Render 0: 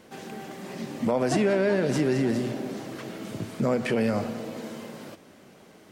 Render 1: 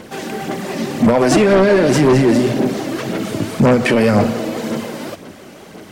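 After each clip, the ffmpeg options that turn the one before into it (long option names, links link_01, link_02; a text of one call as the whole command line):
ffmpeg -i in.wav -filter_complex "[0:a]aphaser=in_gain=1:out_gain=1:delay=3.5:decay=0.42:speed=1.9:type=sinusoidal,asplit=2[link_01][link_02];[link_02]aeval=exprs='0.335*sin(PI/2*2.82*val(0)/0.335)':channel_layout=same,volume=-6dB[link_03];[link_01][link_03]amix=inputs=2:normalize=0,volume=3.5dB" out.wav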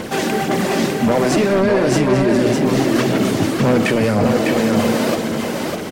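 ffmpeg -i in.wav -af "areverse,acompressor=threshold=-23dB:ratio=10,areverse,aecho=1:1:602:0.631,volume=9dB" out.wav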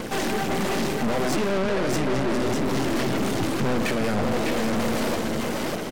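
ffmpeg -i in.wav -af "aeval=exprs='(tanh(12.6*val(0)+0.8)-tanh(0.8))/12.6':channel_layout=same" out.wav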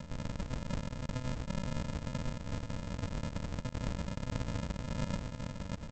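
ffmpeg -i in.wav -af "highpass=frequency=1300:poles=1,aresample=16000,acrusher=samples=42:mix=1:aa=0.000001,aresample=44100,volume=-4.5dB" out.wav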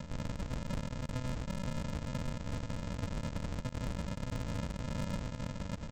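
ffmpeg -i in.wav -af "volume=32.5dB,asoftclip=hard,volume=-32.5dB,volume=1.5dB" out.wav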